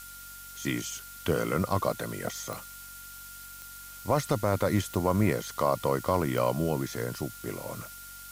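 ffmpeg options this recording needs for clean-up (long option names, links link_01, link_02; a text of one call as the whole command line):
ffmpeg -i in.wav -af "adeclick=threshold=4,bandreject=frequency=47.1:width_type=h:width=4,bandreject=frequency=94.2:width_type=h:width=4,bandreject=frequency=141.3:width_type=h:width=4,bandreject=frequency=188.4:width_type=h:width=4,bandreject=frequency=235.5:width_type=h:width=4,bandreject=frequency=282.6:width_type=h:width=4,bandreject=frequency=1400:width=30,afftdn=noise_reduction=29:noise_floor=-45" out.wav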